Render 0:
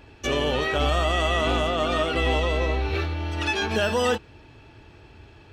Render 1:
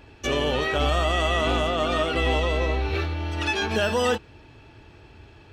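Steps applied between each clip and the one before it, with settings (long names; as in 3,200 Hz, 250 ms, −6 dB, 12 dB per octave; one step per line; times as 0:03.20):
no processing that can be heard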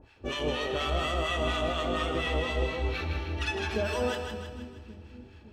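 two-band tremolo in antiphase 4.2 Hz, depth 100%, crossover 900 Hz
echo with a time of its own for lows and highs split 310 Hz, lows 566 ms, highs 158 ms, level −6 dB
four-comb reverb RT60 1.1 s, combs from 29 ms, DRR 10 dB
level −3 dB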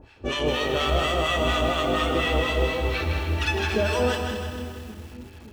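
feedback echo at a low word length 221 ms, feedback 55%, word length 8 bits, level −9 dB
level +6 dB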